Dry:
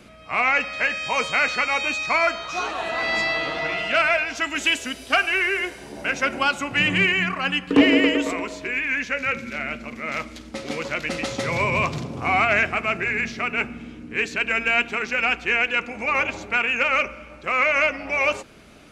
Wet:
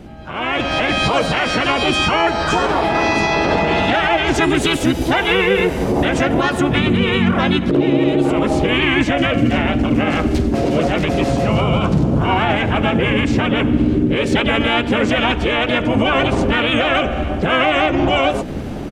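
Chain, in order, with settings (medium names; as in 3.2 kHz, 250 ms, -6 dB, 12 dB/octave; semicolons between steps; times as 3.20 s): tilt shelf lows +9 dB, about 760 Hz; compression 12:1, threshold -27 dBFS, peak gain reduction 23.5 dB; peak limiter -25.5 dBFS, peak gain reduction 9.5 dB; level rider gain up to 12 dB; harmony voices -12 st -7 dB, +4 st -1 dB, +5 st -10 dB; trim +3 dB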